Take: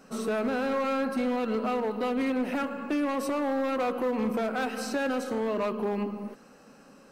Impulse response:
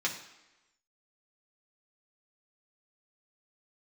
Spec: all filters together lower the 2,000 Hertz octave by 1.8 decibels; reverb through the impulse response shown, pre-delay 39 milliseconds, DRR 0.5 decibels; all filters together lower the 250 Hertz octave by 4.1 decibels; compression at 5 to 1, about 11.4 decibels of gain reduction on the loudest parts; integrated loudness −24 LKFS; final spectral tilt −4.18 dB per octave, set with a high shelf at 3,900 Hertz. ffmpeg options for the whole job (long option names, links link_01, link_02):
-filter_complex "[0:a]equalizer=frequency=250:width_type=o:gain=-4.5,equalizer=frequency=2000:width_type=o:gain=-3.5,highshelf=frequency=3900:gain=4.5,acompressor=threshold=-40dB:ratio=5,asplit=2[link_01][link_02];[1:a]atrim=start_sample=2205,adelay=39[link_03];[link_02][link_03]afir=irnorm=-1:irlink=0,volume=-7dB[link_04];[link_01][link_04]amix=inputs=2:normalize=0,volume=15.5dB"